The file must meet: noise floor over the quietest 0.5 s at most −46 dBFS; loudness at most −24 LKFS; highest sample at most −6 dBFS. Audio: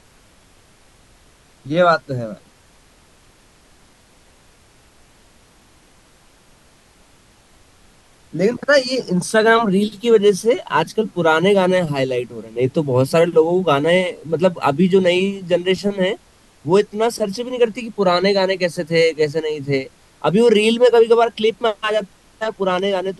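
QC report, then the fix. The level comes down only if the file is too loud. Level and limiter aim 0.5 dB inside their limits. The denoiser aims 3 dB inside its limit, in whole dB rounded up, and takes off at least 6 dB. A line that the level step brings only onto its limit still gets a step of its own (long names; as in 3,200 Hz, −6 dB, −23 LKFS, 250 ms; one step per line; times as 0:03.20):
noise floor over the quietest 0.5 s −51 dBFS: in spec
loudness −17.0 LKFS: out of spec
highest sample −2.5 dBFS: out of spec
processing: level −7.5 dB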